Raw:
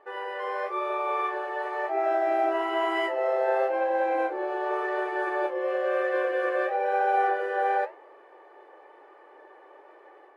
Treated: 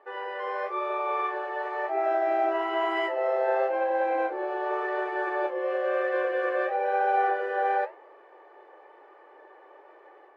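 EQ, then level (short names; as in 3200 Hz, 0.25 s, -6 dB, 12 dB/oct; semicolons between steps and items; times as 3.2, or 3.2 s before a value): HPF 270 Hz; air absorption 69 m; 0.0 dB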